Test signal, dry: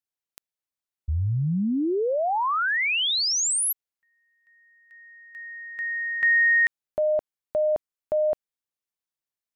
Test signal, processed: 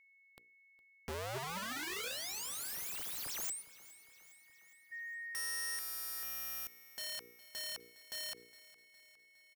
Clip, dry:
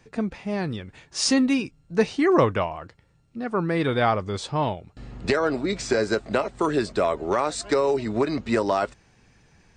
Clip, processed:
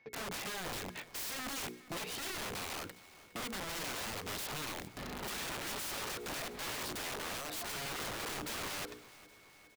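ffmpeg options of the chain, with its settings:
-filter_complex "[0:a]lowpass=f=5200:w=0.5412,lowpass=f=5200:w=1.3066,agate=range=0.141:threshold=0.00316:ratio=16:release=30:detection=rms,highpass=f=360:p=1,highshelf=f=4000:g=-7,bandreject=f=60:t=h:w=6,bandreject=f=120:t=h:w=6,bandreject=f=180:t=h:w=6,bandreject=f=240:t=h:w=6,bandreject=f=300:t=h:w=6,bandreject=f=360:t=h:w=6,bandreject=f=420:t=h:w=6,bandreject=f=480:t=h:w=6,acompressor=threshold=0.0178:ratio=16:attack=0.74:release=100:knee=6:detection=rms,asoftclip=type=tanh:threshold=0.0224,aeval=exprs='val(0)+0.000282*sin(2*PI*2200*n/s)':c=same,aeval=exprs='(mod(133*val(0)+1,2)-1)/133':c=same,asplit=2[s0][s1];[s1]aecho=0:1:411|822|1233|1644|2055:0.112|0.0673|0.0404|0.0242|0.0145[s2];[s0][s2]amix=inputs=2:normalize=0,volume=2.24"

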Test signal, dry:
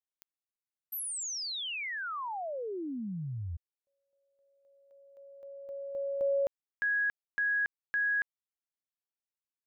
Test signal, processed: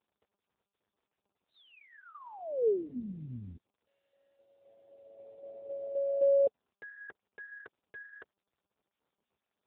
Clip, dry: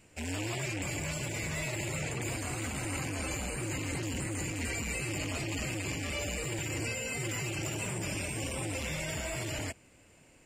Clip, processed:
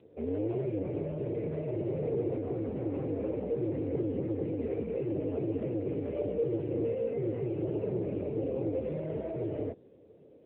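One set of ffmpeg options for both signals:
-af "lowpass=f=450:t=q:w=4.9,crystalizer=i=8.5:c=0" -ar 8000 -c:a libopencore_amrnb -b:a 10200

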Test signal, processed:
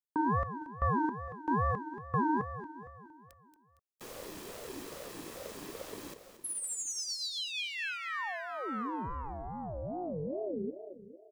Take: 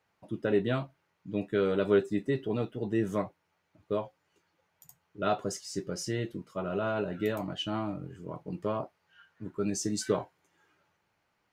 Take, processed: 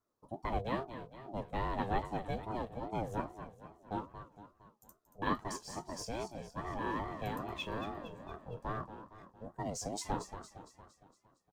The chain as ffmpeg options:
-filter_complex "[0:a]aecho=1:1:1.4:0.34,acrossover=split=130|1000|4500[s0][s1][s2][s3];[s1]aeval=exprs='0.158*(cos(1*acos(clip(val(0)/0.158,-1,1)))-cos(1*PI/2))+0.0562*(cos(2*acos(clip(val(0)/0.158,-1,1)))-cos(2*PI/2))':c=same[s4];[s2]aeval=exprs='sgn(val(0))*max(abs(val(0))-0.00126,0)':c=same[s5];[s3]acrusher=bits=5:mode=log:mix=0:aa=0.000001[s6];[s0][s4][s5][s6]amix=inputs=4:normalize=0,aecho=1:1:230|460|690|920|1150|1380:0.282|0.149|0.0792|0.042|0.0222|0.0118,aeval=exprs='val(0)*sin(2*PI*420*n/s+420*0.3/2.4*sin(2*PI*2.4*n/s))':c=same,volume=0.631"

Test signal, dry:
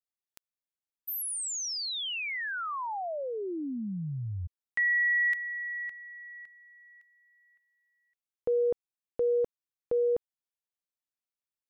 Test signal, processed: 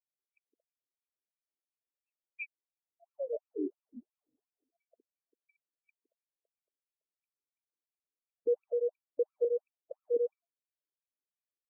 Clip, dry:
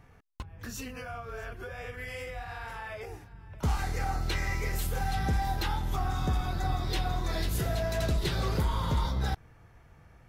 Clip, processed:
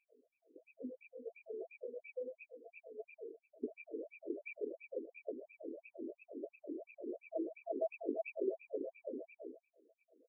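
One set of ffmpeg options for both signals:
-af "aecho=1:1:163.3|227.4:0.562|0.355,afftfilt=real='re*(1-between(b*sr/4096,680,2300))':imag='im*(1-between(b*sr/4096,680,2300))':win_size=4096:overlap=0.75,afftfilt=real='re*between(b*sr/1024,330*pow(1900/330,0.5+0.5*sin(2*PI*2.9*pts/sr))/1.41,330*pow(1900/330,0.5+0.5*sin(2*PI*2.9*pts/sr))*1.41)':imag='im*between(b*sr/1024,330*pow(1900/330,0.5+0.5*sin(2*PI*2.9*pts/sr))/1.41,330*pow(1900/330,0.5+0.5*sin(2*PI*2.9*pts/sr))*1.41)':win_size=1024:overlap=0.75,volume=1.12"

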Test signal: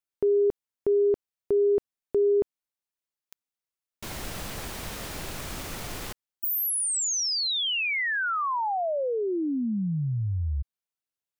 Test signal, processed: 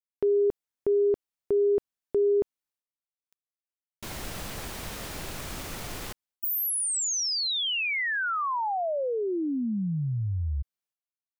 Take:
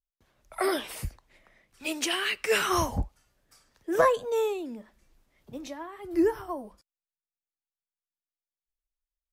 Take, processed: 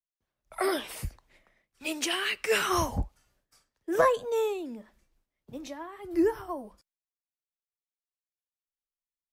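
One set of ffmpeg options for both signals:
-af "agate=range=0.141:threshold=0.002:ratio=3:release=362:detection=peak,volume=0.891"

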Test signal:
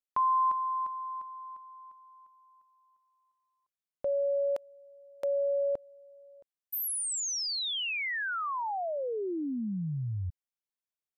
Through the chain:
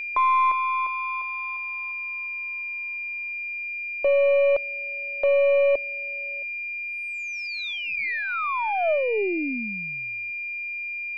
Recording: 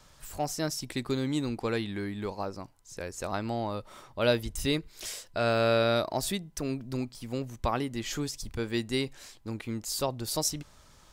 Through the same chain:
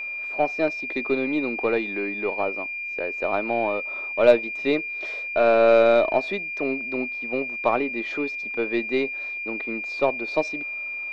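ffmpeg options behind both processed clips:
-af "highpass=f=260:w=0.5412,highpass=f=260:w=1.3066,equalizer=f=420:t=q:w=4:g=3,equalizer=f=630:t=q:w=4:g=6,equalizer=f=1600:t=q:w=4:g=-4,equalizer=f=3000:t=q:w=4:g=-9,lowpass=f=3200:w=0.5412,lowpass=f=3200:w=1.3066,aeval=exprs='val(0)+0.0178*sin(2*PI*2400*n/s)':c=same,aeval=exprs='0.355*(cos(1*acos(clip(val(0)/0.355,-1,1)))-cos(1*PI/2))+0.00794*(cos(8*acos(clip(val(0)/0.355,-1,1)))-cos(8*PI/2))':c=same,volume=2"

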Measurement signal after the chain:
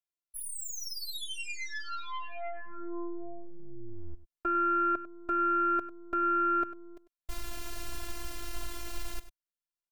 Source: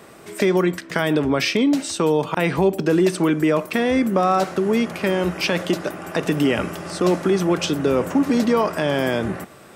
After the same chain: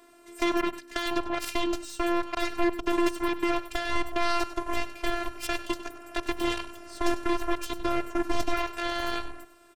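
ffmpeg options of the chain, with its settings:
-af "aeval=exprs='0.531*(cos(1*acos(clip(val(0)/0.531,-1,1)))-cos(1*PI/2))+0.075*(cos(6*acos(clip(val(0)/0.531,-1,1)))-cos(6*PI/2))+0.133*(cos(7*acos(clip(val(0)/0.531,-1,1)))-cos(7*PI/2))+0.0596*(cos(8*acos(clip(val(0)/0.531,-1,1)))-cos(8*PI/2))':c=same,asubboost=boost=3:cutoff=79,afftfilt=real='hypot(re,im)*cos(PI*b)':imag='0':win_size=512:overlap=0.75,aecho=1:1:98:0.188,volume=0.531"

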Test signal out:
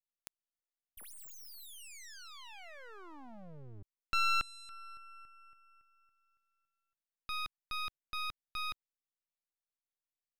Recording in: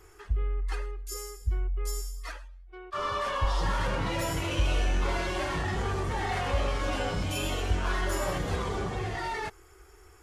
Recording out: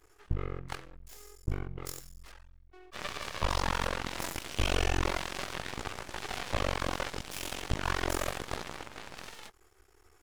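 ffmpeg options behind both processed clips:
-af "equalizer=f=98:t=o:w=1.7:g=-3,aeval=exprs='0.141*(cos(1*acos(clip(val(0)/0.141,-1,1)))-cos(1*PI/2))+0.01*(cos(5*acos(clip(val(0)/0.141,-1,1)))-cos(5*PI/2))+0.0398*(cos(7*acos(clip(val(0)/0.141,-1,1)))-cos(7*PI/2))+0.000891*(cos(8*acos(clip(val(0)/0.141,-1,1)))-cos(8*PI/2))':c=same,aeval=exprs='max(val(0),0)':c=same"

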